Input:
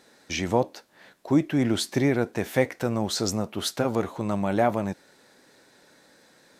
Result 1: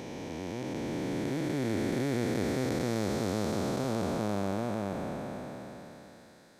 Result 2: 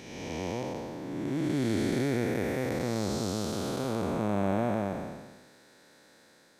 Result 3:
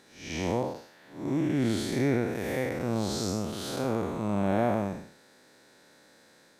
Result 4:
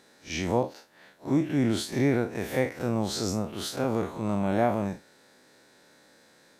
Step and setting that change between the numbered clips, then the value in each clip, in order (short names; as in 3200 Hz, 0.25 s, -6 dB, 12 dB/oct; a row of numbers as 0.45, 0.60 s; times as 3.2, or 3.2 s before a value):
time blur, width: 1660, 578, 222, 88 ms